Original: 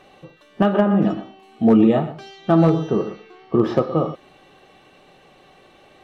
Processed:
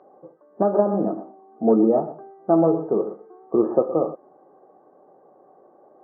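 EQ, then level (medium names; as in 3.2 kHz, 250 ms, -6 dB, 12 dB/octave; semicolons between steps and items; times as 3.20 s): Gaussian low-pass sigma 9.9 samples; high-pass 440 Hz 12 dB/octave; distance through air 260 m; +6.0 dB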